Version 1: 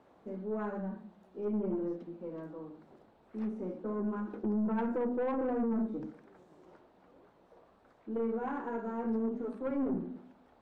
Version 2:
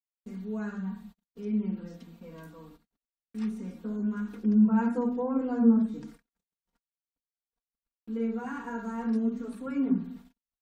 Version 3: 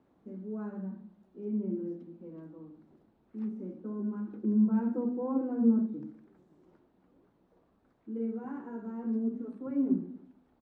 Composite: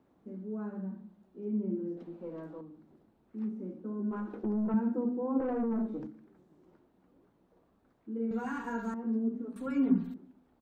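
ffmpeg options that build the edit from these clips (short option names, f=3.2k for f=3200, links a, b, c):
-filter_complex "[0:a]asplit=3[a][b][c];[1:a]asplit=2[d][e];[2:a]asplit=6[f][g][h][i][j][k];[f]atrim=end=1.972[l];[a]atrim=start=1.968:end=2.612[m];[g]atrim=start=2.608:end=4.112[n];[b]atrim=start=4.108:end=4.742[o];[h]atrim=start=4.738:end=5.402[p];[c]atrim=start=5.398:end=6.072[q];[i]atrim=start=6.068:end=8.312[r];[d]atrim=start=8.308:end=8.942[s];[j]atrim=start=8.938:end=9.562[t];[e]atrim=start=9.558:end=10.142[u];[k]atrim=start=10.138[v];[l][m]acrossfade=d=0.004:c1=hsin:c2=hsin[w];[w][n]acrossfade=d=0.004:c1=hsin:c2=hsin[x];[x][o]acrossfade=d=0.004:c1=hsin:c2=hsin[y];[y][p]acrossfade=d=0.004:c1=hsin:c2=hsin[z];[z][q]acrossfade=d=0.004:c1=hsin:c2=hsin[aa];[aa][r]acrossfade=d=0.004:c1=hsin:c2=hsin[ab];[ab][s]acrossfade=d=0.004:c1=hsin:c2=hsin[ac];[ac][t]acrossfade=d=0.004:c1=hsin:c2=hsin[ad];[ad][u]acrossfade=d=0.004:c1=hsin:c2=hsin[ae];[ae][v]acrossfade=d=0.004:c1=hsin:c2=hsin"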